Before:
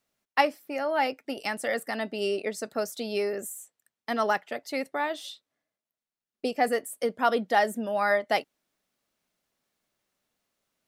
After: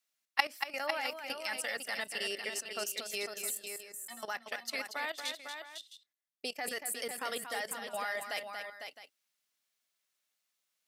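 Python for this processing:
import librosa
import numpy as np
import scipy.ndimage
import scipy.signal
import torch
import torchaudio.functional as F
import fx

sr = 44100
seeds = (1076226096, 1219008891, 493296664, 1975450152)

p1 = fx.tilt_shelf(x, sr, db=-10.0, hz=970.0)
p2 = fx.level_steps(p1, sr, step_db=16)
p3 = fx.stiff_resonator(p2, sr, f0_hz=110.0, decay_s=0.33, stiffness=0.03, at=(3.59, 4.23))
p4 = p3 + fx.echo_multitap(p3, sr, ms=(233, 502, 661), db=(-8.0, -7.5, -15.0), dry=0)
y = p4 * librosa.db_to_amplitude(-4.5)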